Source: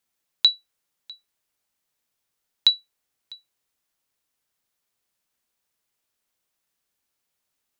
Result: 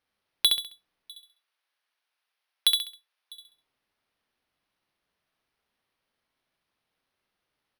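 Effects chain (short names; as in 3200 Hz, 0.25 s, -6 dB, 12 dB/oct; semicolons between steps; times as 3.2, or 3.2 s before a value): careless resampling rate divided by 6×, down none, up hold; 1.11–3.33 Bessel high-pass 940 Hz, order 2; feedback echo 67 ms, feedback 34%, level -4 dB; gain -4.5 dB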